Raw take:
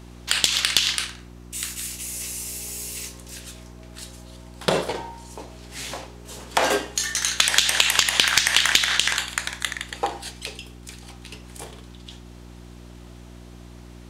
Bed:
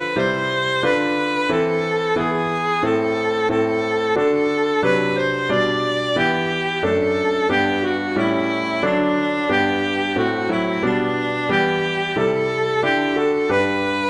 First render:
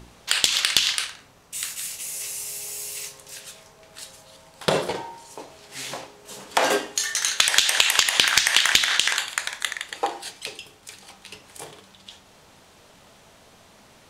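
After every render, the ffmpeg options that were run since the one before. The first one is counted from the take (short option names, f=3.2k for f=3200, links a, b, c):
-af "bandreject=f=60:t=h:w=4,bandreject=f=120:t=h:w=4,bandreject=f=180:t=h:w=4,bandreject=f=240:t=h:w=4,bandreject=f=300:t=h:w=4,bandreject=f=360:t=h:w=4"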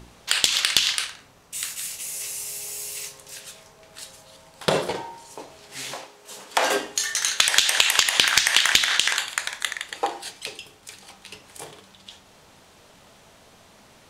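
-filter_complex "[0:a]asettb=1/sr,asplit=3[a][b][c];[a]atrim=end=5.924[d];[b]atrim=start=5.92:end=6.76,asetpts=PTS-STARTPTS,afade=t=in:d=0.004:c=qsin,afade=t=out:st=0.836:d=0.004:c=qsin,lowshelf=f=250:g=-11.5[e];[c]atrim=start=6.756[f];[d][e]acrossfade=d=0.004:c1=hsin:c2=qsin[g];[g][f]acrossfade=d=0.004:c1=qsin:c2=hsin"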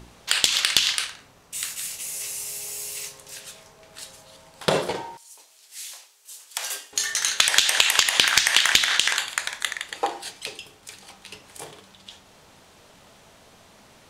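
-filter_complex "[0:a]asettb=1/sr,asplit=3[a][b][c];[a]atrim=end=5.174[d];[b]atrim=start=5.17:end=6.93,asetpts=PTS-STARTPTS,afade=t=in:d=0.004:c=qsin,afade=t=out:st=1.756:d=0.004:c=qsin,aderivative[e];[c]atrim=start=6.926[f];[d][e]acrossfade=d=0.004:c1=hsin:c2=qsin[g];[g][f]acrossfade=d=0.004:c1=qsin:c2=hsin"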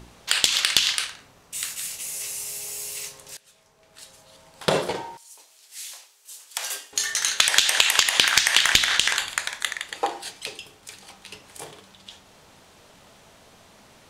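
-filter_complex "[0:a]asettb=1/sr,asplit=3[a][b][c];[a]atrim=end=8.574[d];[b]atrim=start=8.57:end=9.42,asetpts=PTS-STARTPTS,afade=t=in:d=0.004:c=qsin,afade=t=out:st=0.846:d=0.004:c=qsin,lowshelf=f=150:g=9.5[e];[c]atrim=start=9.416[f];[d][e]acrossfade=d=0.004:c1=hsin:c2=qsin[g];[g][f]acrossfade=d=0.004:c1=qsin:c2=hsin,asplit=2[h][i];[h]atrim=end=3.37,asetpts=PTS-STARTPTS,afade=t=out:st=3.366:d=0.004:c=hsin:silence=0.105925[j];[i]atrim=start=3.37,asetpts=PTS-STARTPTS,afade=t=in:d=1.35:silence=0.105925[k];[j][k]concat=n=2:v=0:a=1"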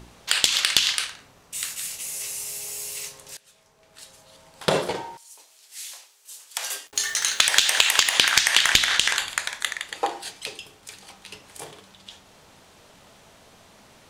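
-filter_complex "[0:a]asettb=1/sr,asplit=3[a][b][c];[a]atrim=end=6.874[d];[b]atrim=start=6.87:end=8.16,asetpts=PTS-STARTPTS,afade=t=in:d=0.004:c=qsin,afade=t=out:st=1.286:d=0.004:c=qsin,acrusher=bits=6:mix=0:aa=0.5[e];[c]atrim=start=8.156[f];[d][e]acrossfade=d=0.004:c1=hsin:c2=qsin[g];[g][f]acrossfade=d=0.004:c1=qsin:c2=hsin"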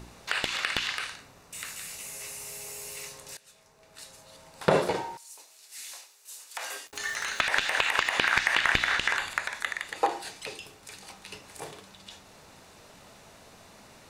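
-filter_complex "[0:a]bandreject=f=3.2k:w=11,acrossover=split=2500[a][b];[b]acompressor=threshold=-38dB:ratio=4:attack=1:release=60[c];[a][c]amix=inputs=2:normalize=0"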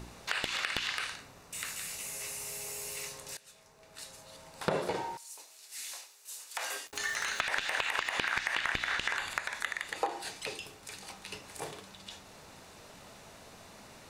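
-af "acompressor=threshold=-30dB:ratio=3"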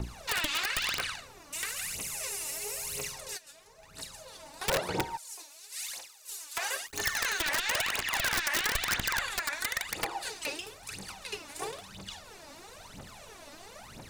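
-filter_complex "[0:a]aphaser=in_gain=1:out_gain=1:delay=3.6:decay=0.76:speed=1:type=triangular,acrossover=split=260[a][b];[b]aeval=exprs='(mod(11.9*val(0)+1,2)-1)/11.9':c=same[c];[a][c]amix=inputs=2:normalize=0"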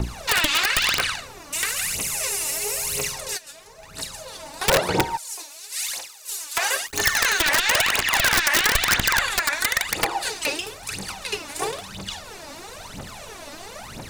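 -af "volume=10.5dB"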